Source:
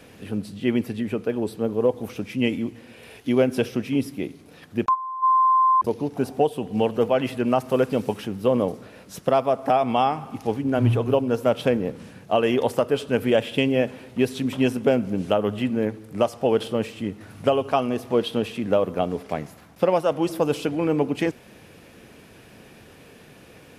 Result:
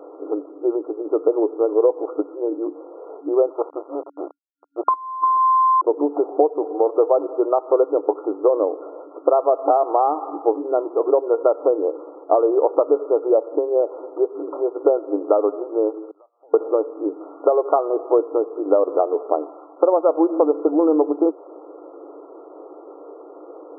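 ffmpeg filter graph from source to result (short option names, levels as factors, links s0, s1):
-filter_complex "[0:a]asettb=1/sr,asplit=3[s0][s1][s2];[s0]atrim=end=3.504[s3];[s1]atrim=start=3.5:end=5.37,asetpts=PTS-STARTPTS,afade=t=in:d=0.004:c=qsin,afade=t=out:st=1.866:d=0.004:c=qsin,bandpass=f=850:t=q:w=0.95,acrusher=bits=4:dc=4:mix=0:aa=0.000001[s4];[s2]atrim=start=5.366[s5];[s3][s4]acrossfade=d=0.004:c1=hsin:c2=qsin[s6];[s6][s5]acrossfade=d=0.004:c1=qsin:c2=hsin,asettb=1/sr,asplit=3[s7][s8][s9];[s7]atrim=end=16.114[s10];[s8]atrim=start=16.11:end=16.54,asetpts=PTS-STARTPTS,afade=t=in:d=0.004:c=qsin,afade=t=out:st=0.426:d=0.004:c=qsin,bandpass=f=5900:t=q:w=2.6,acompressor=threshold=0.00112:ratio=4:attack=3.2:release=140:knee=1:detection=peak[s11];[s9]atrim=start=16.536[s12];[s10][s11]acrossfade=d=0.004:c1=hsin:c2=qsin[s13];[s13][s12]acrossfade=d=0.004:c1=qsin:c2=hsin,acompressor=threshold=0.0631:ratio=6,equalizer=f=440:w=0.31:g=10.5,afftfilt=real='re*between(b*sr/4096,290,1400)':imag='im*between(b*sr/4096,290,1400)':win_size=4096:overlap=0.75,volume=1.26"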